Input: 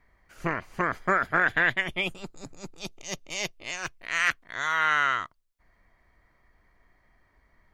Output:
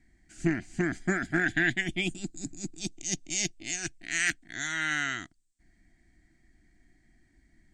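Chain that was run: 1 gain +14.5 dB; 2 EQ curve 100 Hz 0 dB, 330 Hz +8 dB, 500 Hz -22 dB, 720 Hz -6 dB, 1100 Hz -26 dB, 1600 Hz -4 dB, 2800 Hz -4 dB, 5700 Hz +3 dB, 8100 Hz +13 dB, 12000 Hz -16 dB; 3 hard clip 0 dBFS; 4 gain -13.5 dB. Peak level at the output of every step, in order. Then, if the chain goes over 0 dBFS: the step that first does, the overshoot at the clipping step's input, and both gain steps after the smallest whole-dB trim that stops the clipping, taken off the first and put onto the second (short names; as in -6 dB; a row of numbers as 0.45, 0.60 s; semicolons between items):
+3.5, +3.0, 0.0, -13.5 dBFS; step 1, 3.0 dB; step 1 +11.5 dB, step 4 -10.5 dB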